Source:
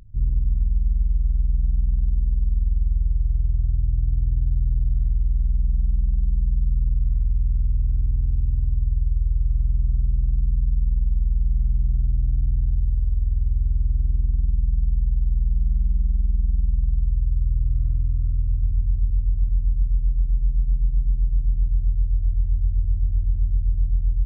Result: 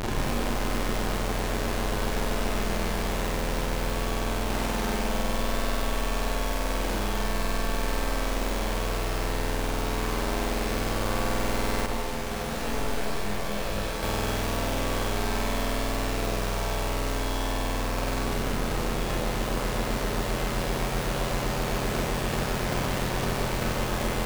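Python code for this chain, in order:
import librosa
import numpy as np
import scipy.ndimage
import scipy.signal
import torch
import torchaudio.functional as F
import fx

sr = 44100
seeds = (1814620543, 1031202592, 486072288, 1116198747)

y = np.sign(x) * np.sqrt(np.mean(np.square(x)))
y = fx.echo_diffused(y, sr, ms=1928, feedback_pct=73, wet_db=-9)
y = fx.rev_schroeder(y, sr, rt60_s=0.89, comb_ms=30, drr_db=-3.0)
y = fx.rider(y, sr, range_db=10, speed_s=0.5)
y = fx.low_shelf(y, sr, hz=170.0, db=-10.5)
y = fx.detune_double(y, sr, cents=36, at=(11.86, 14.03))
y = F.gain(torch.from_numpy(y), -4.5).numpy()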